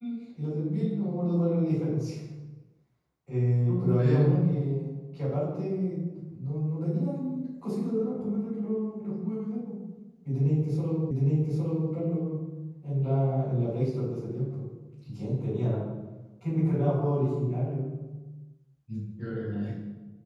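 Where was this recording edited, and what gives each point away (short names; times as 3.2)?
11.11 repeat of the last 0.81 s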